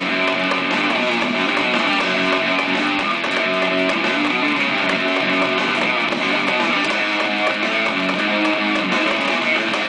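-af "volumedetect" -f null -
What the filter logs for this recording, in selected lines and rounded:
mean_volume: -18.8 dB
max_volume: -4.1 dB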